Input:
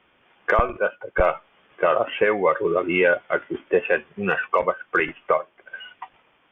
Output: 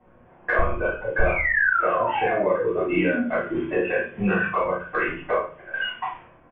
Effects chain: painted sound fall, 1.25–3.21 s, 230–2500 Hz -23 dBFS; compression 12:1, threshold -29 dBFS, peak gain reduction 17.5 dB; distance through air 210 m; doubling 34 ms -4 dB; level-controlled noise filter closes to 780 Hz, open at -31 dBFS; reverberation RT60 0.40 s, pre-delay 3 ms, DRR -7.5 dB

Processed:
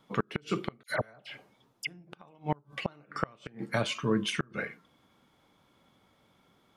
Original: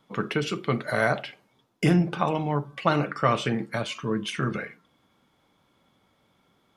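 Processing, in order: inverted gate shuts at -15 dBFS, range -32 dB; 0.83–1.87 s: phase dispersion lows, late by 68 ms, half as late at 1.8 kHz

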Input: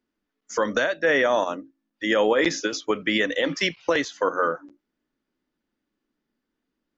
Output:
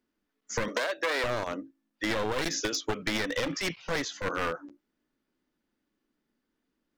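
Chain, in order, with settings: one-sided wavefolder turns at -22 dBFS; 0.68–1.24 s: high-pass 310 Hz 24 dB/octave; 2.31–2.82 s: treble shelf 5.2 kHz +6 dB; 3.51–4.47 s: transient shaper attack -10 dB, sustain +2 dB; compression 5:1, threshold -26 dBFS, peak gain reduction 9 dB

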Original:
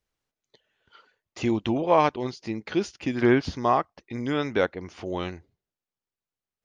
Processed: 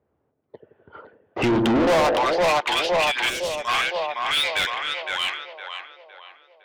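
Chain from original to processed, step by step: one-sided wavefolder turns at -13 dBFS; high-pass sweep 85 Hz -> 3.2 kHz, 1.38–2.58 s; compression 2:1, threshold -28 dBFS, peak gain reduction 9.5 dB; two-band feedback delay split 490 Hz, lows 84 ms, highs 511 ms, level -5 dB; level-controlled noise filter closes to 530 Hz, open at -24.5 dBFS; distance through air 84 m; overdrive pedal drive 32 dB, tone 5.4 kHz, clips at -12 dBFS; time-frequency box 3.29–3.68 s, 630–5200 Hz -9 dB

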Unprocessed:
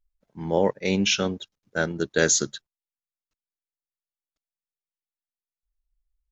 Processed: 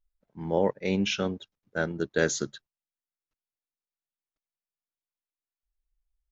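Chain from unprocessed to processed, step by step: low-pass 2.5 kHz 6 dB/octave; trim -3 dB

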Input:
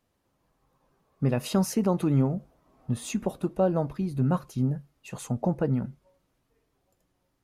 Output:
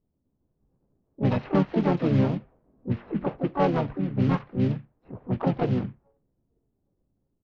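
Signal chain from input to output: CVSD coder 16 kbps; harmony voices -4 st -5 dB, +7 st -5 dB, +12 st -13 dB; level-controlled noise filter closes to 320 Hz, open at -18 dBFS

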